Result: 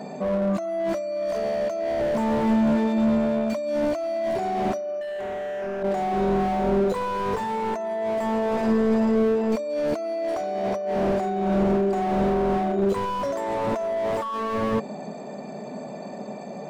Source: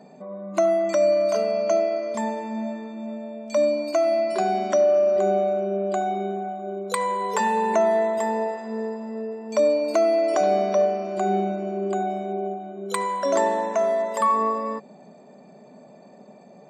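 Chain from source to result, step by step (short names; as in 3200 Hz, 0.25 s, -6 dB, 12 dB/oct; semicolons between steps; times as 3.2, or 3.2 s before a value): notches 60/120/180/240/300/360/420/480/540/600 Hz; 5.01–5.83 overdrive pedal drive 32 dB, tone 1800 Hz, clips at -11.5 dBFS; negative-ratio compressor -30 dBFS, ratio -1; slew limiter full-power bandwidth 20 Hz; gain +7 dB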